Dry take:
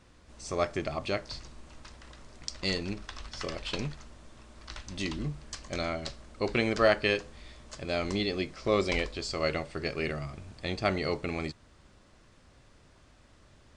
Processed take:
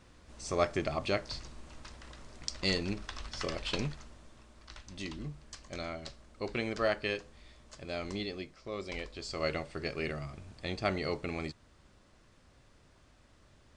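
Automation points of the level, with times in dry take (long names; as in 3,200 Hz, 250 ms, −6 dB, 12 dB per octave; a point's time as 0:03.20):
0:03.80 0 dB
0:04.69 −7 dB
0:08.23 −7 dB
0:08.71 −14 dB
0:09.43 −3.5 dB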